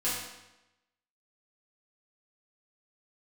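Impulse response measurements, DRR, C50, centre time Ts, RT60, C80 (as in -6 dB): -10.5 dB, 1.0 dB, 65 ms, 0.95 s, 3.5 dB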